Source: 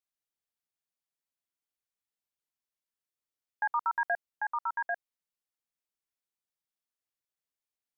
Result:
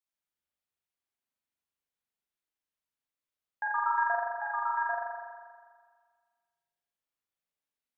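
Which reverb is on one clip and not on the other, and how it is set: spring tank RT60 1.7 s, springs 40 ms, chirp 20 ms, DRR -3 dB; gain -3.5 dB

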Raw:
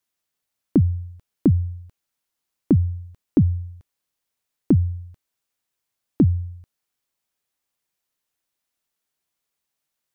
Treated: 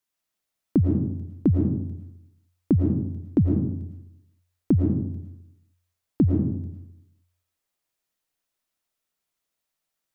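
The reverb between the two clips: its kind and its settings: digital reverb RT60 0.82 s, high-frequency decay 0.4×, pre-delay 70 ms, DRR 0.5 dB; gain -3.5 dB

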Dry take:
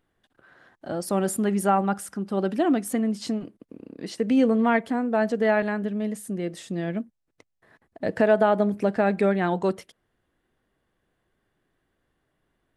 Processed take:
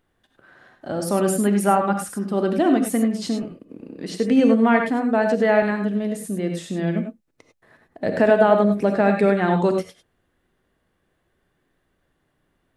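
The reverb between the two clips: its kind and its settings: non-linear reverb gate 0.12 s rising, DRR 4.5 dB; gain +3 dB

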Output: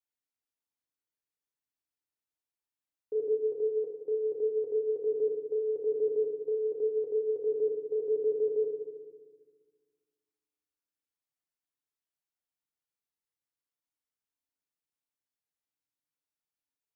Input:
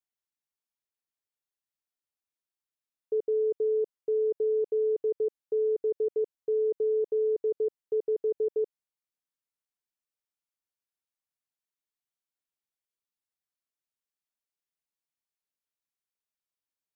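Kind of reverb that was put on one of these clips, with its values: FDN reverb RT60 1.5 s, low-frequency decay 1.55×, high-frequency decay 0.4×, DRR 0.5 dB; gain -5.5 dB

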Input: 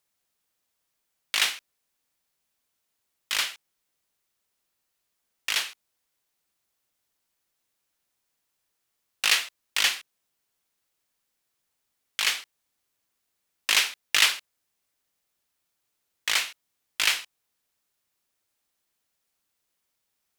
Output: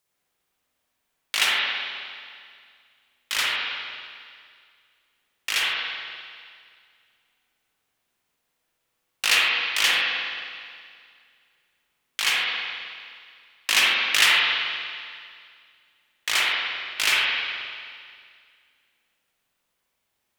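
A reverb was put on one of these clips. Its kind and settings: spring tank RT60 2.1 s, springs 44/52 ms, chirp 60 ms, DRR -5.5 dB

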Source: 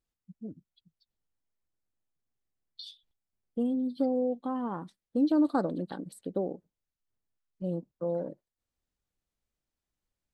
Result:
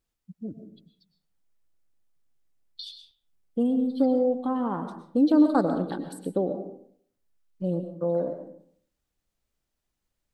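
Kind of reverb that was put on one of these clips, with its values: digital reverb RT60 0.61 s, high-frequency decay 0.55×, pre-delay 80 ms, DRR 7.5 dB; gain +5 dB

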